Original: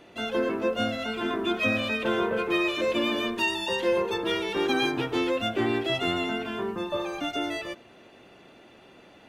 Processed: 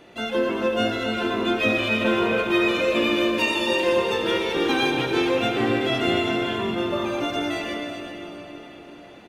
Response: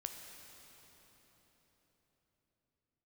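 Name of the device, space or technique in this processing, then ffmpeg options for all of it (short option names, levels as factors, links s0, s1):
cave: -filter_complex "[0:a]aecho=1:1:381:0.316[s0];[1:a]atrim=start_sample=2205[s1];[s0][s1]afir=irnorm=-1:irlink=0,volume=2.11"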